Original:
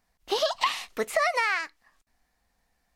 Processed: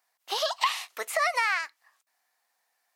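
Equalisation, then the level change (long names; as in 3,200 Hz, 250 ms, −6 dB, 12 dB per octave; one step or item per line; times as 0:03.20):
Chebyshev high-pass filter 820 Hz, order 2
high-shelf EQ 9,200 Hz +7.5 dB
0.0 dB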